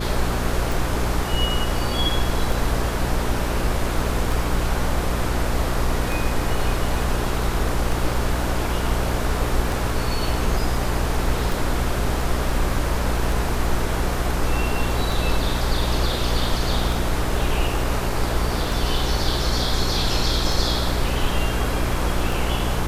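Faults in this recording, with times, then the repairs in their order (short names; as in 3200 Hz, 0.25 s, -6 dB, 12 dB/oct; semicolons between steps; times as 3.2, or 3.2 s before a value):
hum 60 Hz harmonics 7 -26 dBFS
tick 33 1/3 rpm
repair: de-click; de-hum 60 Hz, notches 7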